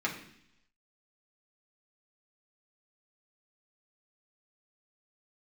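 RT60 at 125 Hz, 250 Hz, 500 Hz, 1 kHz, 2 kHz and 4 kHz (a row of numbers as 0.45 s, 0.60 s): 0.90 s, 0.85 s, 0.70 s, 0.70 s, 0.85 s, 0.95 s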